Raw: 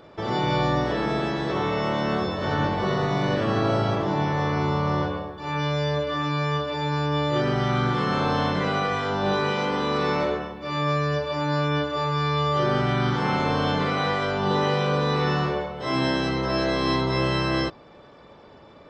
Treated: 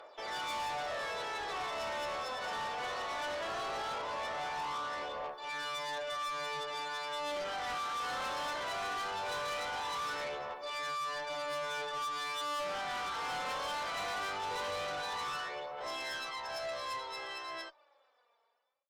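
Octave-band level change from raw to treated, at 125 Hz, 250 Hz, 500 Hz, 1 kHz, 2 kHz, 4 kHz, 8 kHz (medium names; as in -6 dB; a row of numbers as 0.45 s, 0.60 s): -34.0 dB, -28.5 dB, -15.5 dB, -10.0 dB, -9.0 dB, -8.5 dB, no reading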